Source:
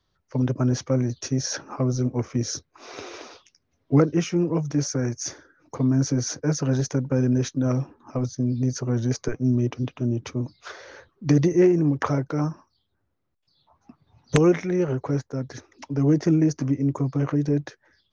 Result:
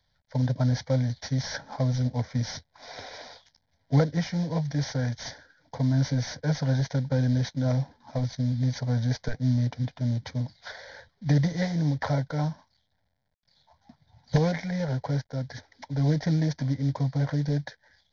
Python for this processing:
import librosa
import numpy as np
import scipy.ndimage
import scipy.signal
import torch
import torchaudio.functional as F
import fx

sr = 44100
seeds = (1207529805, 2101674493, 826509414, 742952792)

y = fx.cvsd(x, sr, bps=32000)
y = fx.fixed_phaser(y, sr, hz=1800.0, stages=8)
y = y * librosa.db_to_amplitude(1.5)